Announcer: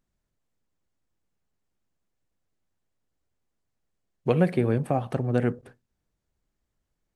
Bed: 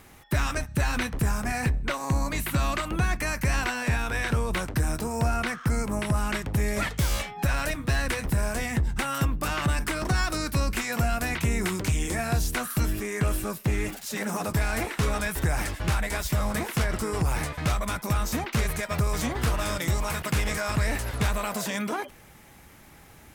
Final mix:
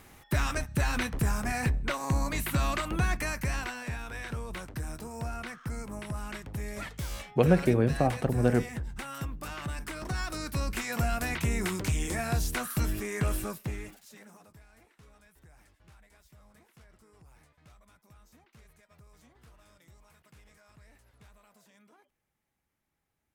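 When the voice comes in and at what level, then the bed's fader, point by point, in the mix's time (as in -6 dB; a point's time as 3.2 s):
3.10 s, -0.5 dB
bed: 3.14 s -2.5 dB
3.94 s -11 dB
9.72 s -11 dB
11.04 s -3.5 dB
13.43 s -3.5 dB
14.66 s -32 dB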